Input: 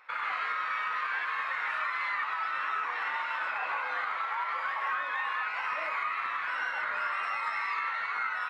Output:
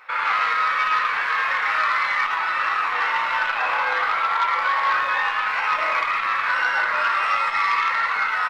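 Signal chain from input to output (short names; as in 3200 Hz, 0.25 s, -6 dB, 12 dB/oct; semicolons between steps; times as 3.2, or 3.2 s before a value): speakerphone echo 0.11 s, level -12 dB; shoebox room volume 64 m³, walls mixed, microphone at 0.72 m; core saturation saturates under 1500 Hz; gain +8.5 dB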